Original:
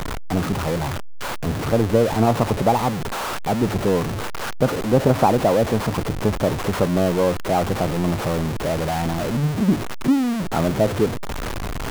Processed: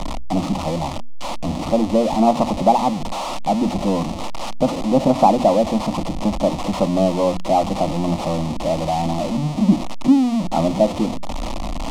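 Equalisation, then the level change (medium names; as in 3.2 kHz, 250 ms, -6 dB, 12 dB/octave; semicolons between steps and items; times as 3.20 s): distance through air 64 m; hum notches 60/120/180/240 Hz; static phaser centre 420 Hz, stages 6; +5.0 dB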